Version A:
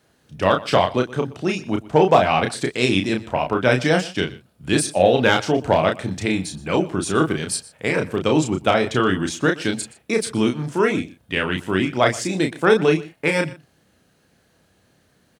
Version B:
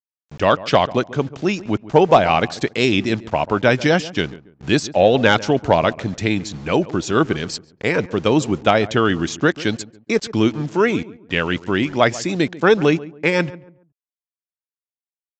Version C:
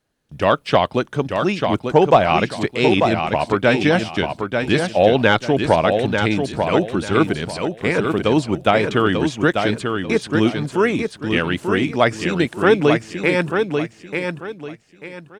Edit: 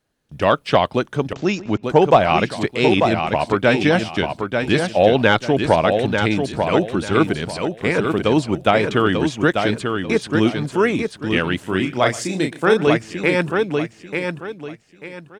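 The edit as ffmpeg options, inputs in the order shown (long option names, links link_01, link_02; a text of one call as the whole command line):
ffmpeg -i take0.wav -i take1.wav -i take2.wav -filter_complex "[2:a]asplit=3[link_01][link_02][link_03];[link_01]atrim=end=1.332[link_04];[1:a]atrim=start=1.328:end=1.832[link_05];[link_02]atrim=start=1.828:end=11.632[link_06];[0:a]atrim=start=11.628:end=12.872[link_07];[link_03]atrim=start=12.868[link_08];[link_04][link_05]acrossfade=duration=0.004:curve1=hsin:curve2=hsin[link_09];[link_09][link_06]acrossfade=duration=0.004:curve1=hsin:curve2=hsin[link_10];[link_10][link_07]acrossfade=duration=0.004:curve1=hsin:curve2=hsin[link_11];[link_11][link_08]acrossfade=duration=0.004:curve1=hsin:curve2=hsin" out.wav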